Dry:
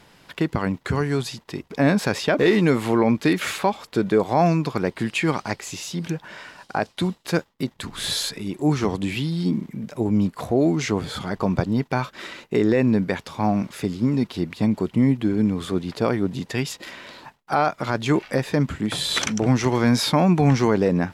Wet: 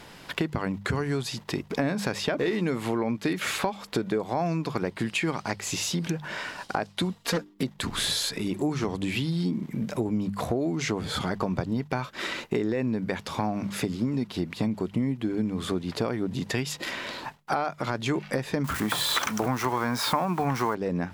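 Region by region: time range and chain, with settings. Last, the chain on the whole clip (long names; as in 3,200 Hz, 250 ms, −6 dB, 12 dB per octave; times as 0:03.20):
0:07.15–0:07.63: mains-hum notches 50/100/150/200/250/300/350/400 Hz + comb filter 4.3 ms, depth 75% + highs frequency-modulated by the lows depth 0.36 ms
0:18.64–0:20.75: spike at every zero crossing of −23.5 dBFS + parametric band 1,100 Hz +14 dB 1.5 octaves
whole clip: mains-hum notches 50/100/150/200 Hz; downward compressor 5 to 1, threshold −31 dBFS; level +5.5 dB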